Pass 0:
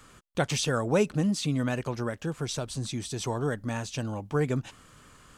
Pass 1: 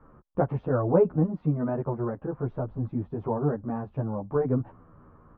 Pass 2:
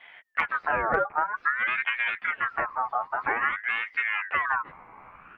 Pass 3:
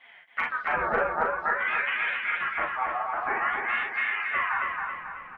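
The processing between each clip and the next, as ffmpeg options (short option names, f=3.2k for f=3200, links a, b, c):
-filter_complex "[0:a]lowpass=f=1.1k:w=0.5412,lowpass=f=1.1k:w=1.3066,asplit=2[a][b];[b]adelay=10.8,afreqshift=-0.54[c];[a][c]amix=inputs=2:normalize=1,volume=6dB"
-af "acompressor=threshold=-27dB:ratio=5,aeval=exprs='0.119*(cos(1*acos(clip(val(0)/0.119,-1,1)))-cos(1*PI/2))+0.0119*(cos(2*acos(clip(val(0)/0.119,-1,1)))-cos(2*PI/2))':c=same,aeval=exprs='val(0)*sin(2*PI*1500*n/s+1500*0.35/0.51*sin(2*PI*0.51*n/s))':c=same,volume=7dB"
-filter_complex "[0:a]asplit=2[a][b];[b]aecho=0:1:39|51:0.631|0.447[c];[a][c]amix=inputs=2:normalize=0,flanger=delay=3.7:depth=2.2:regen=-38:speed=1.9:shape=triangular,asplit=2[d][e];[e]aecho=0:1:273|546|819|1092|1365|1638:0.631|0.29|0.134|0.0614|0.0283|0.013[f];[d][f]amix=inputs=2:normalize=0"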